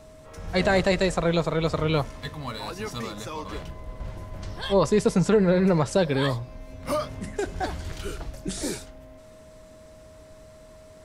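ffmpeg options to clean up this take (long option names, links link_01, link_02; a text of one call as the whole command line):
ffmpeg -i in.wav -af "bandreject=frequency=630:width=30" out.wav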